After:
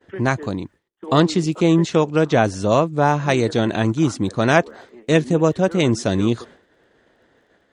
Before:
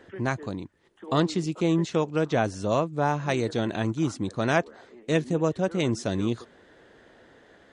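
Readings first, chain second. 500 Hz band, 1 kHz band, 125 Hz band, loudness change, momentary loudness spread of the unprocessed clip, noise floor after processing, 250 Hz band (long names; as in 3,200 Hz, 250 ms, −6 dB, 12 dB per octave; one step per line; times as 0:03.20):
+8.0 dB, +8.0 dB, +8.0 dB, +8.0 dB, 8 LU, −62 dBFS, +8.0 dB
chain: surface crackle 12 per second −53 dBFS
downward expander −45 dBFS
level +8 dB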